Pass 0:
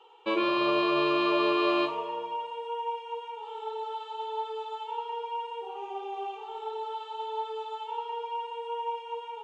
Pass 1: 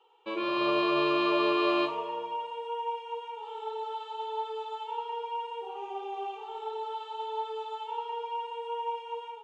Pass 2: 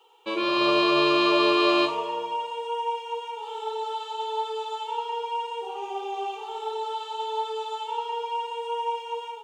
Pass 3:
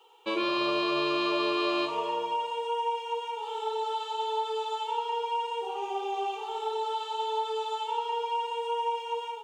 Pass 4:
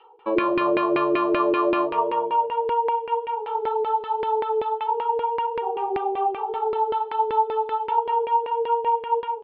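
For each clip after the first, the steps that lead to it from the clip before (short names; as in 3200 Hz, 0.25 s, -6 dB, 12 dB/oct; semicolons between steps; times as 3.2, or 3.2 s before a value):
AGC gain up to 8 dB; gain -8.5 dB
tone controls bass 0 dB, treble +12 dB; gain +5 dB
compressor 4:1, threshold -25 dBFS, peak gain reduction 7.5 dB
LFO low-pass saw down 5.2 Hz 370–2200 Hz; downsampling 11025 Hz; gain +4.5 dB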